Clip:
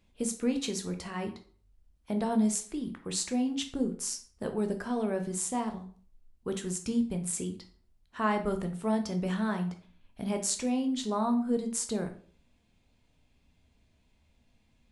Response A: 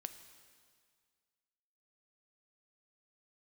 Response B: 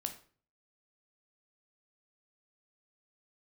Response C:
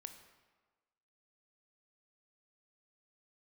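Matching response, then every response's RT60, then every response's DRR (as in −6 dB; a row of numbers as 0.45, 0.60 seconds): B; 1.9, 0.45, 1.4 seconds; 9.0, 5.5, 7.5 decibels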